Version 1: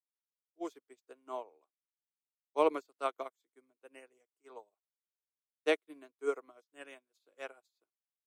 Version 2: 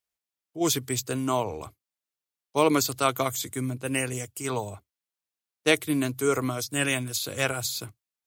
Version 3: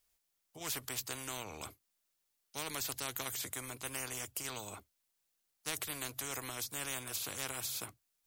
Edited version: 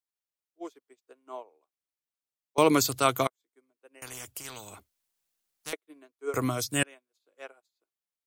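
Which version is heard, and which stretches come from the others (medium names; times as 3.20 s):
1
2.58–3.27 s: from 2
4.02–5.73 s: from 3
6.34–6.83 s: from 2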